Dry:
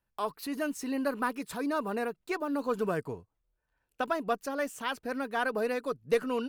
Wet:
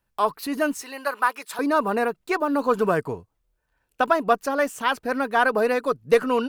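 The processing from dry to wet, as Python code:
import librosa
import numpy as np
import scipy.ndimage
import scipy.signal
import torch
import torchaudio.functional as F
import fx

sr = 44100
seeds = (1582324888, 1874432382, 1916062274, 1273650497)

y = fx.highpass(x, sr, hz=780.0, slope=12, at=(0.82, 1.59))
y = fx.dynamic_eq(y, sr, hz=1000.0, q=0.73, threshold_db=-41.0, ratio=4.0, max_db=5)
y = y * librosa.db_to_amplitude(7.0)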